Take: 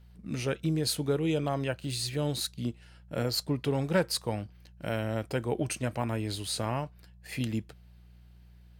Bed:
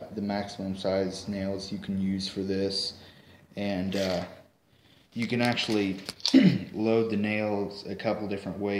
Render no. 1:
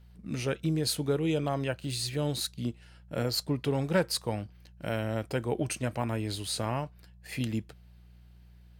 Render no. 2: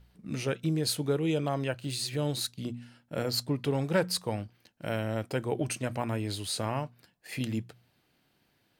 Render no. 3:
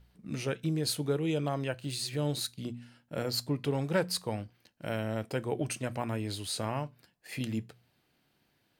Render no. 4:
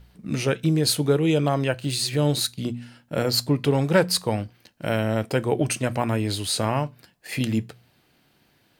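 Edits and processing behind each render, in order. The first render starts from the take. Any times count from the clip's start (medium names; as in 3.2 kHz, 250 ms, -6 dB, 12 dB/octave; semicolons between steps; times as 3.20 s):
no audible change
de-hum 60 Hz, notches 4
feedback comb 73 Hz, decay 0.24 s, harmonics all, mix 30%
trim +10 dB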